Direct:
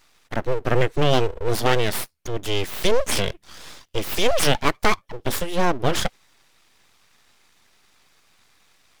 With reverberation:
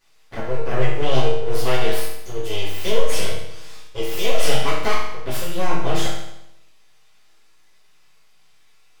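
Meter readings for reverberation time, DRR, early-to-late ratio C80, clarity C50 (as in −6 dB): 0.80 s, −9.5 dB, 4.5 dB, 1.5 dB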